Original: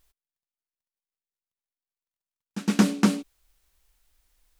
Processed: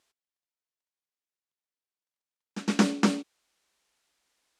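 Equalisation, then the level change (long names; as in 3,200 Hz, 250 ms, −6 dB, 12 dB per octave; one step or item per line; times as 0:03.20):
band-pass filter 230–7,900 Hz
0.0 dB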